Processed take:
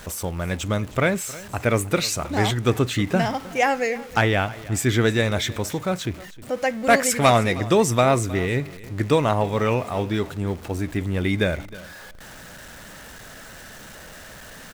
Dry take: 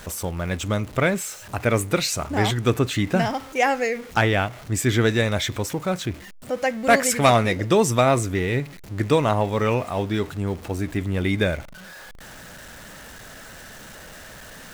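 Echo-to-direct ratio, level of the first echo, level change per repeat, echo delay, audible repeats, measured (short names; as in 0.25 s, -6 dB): -19.0 dB, -19.0 dB, -15.0 dB, 0.313 s, 2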